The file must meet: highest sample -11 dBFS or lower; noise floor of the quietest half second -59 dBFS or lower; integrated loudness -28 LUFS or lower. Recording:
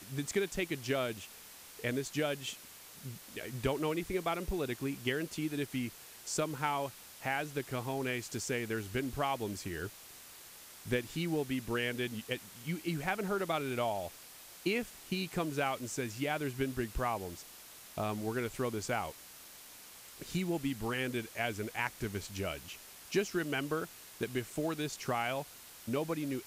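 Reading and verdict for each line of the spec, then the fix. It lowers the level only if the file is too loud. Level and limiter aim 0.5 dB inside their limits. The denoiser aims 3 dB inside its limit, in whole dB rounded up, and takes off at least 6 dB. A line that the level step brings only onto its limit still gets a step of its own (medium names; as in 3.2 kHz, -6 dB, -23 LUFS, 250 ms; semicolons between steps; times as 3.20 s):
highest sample -19.5 dBFS: pass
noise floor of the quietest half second -53 dBFS: fail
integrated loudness -36.5 LUFS: pass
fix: noise reduction 9 dB, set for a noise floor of -53 dBFS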